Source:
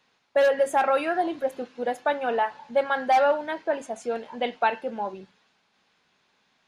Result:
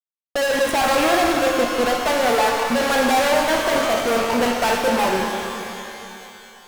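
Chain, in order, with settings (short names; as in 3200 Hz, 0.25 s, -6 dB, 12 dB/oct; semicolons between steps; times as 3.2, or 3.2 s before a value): Wiener smoothing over 9 samples; 3.39–4.22 de-hum 49.51 Hz, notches 36; fuzz box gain 45 dB, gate -43 dBFS; shimmer reverb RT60 2.9 s, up +12 st, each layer -8 dB, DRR 1.5 dB; gain -5.5 dB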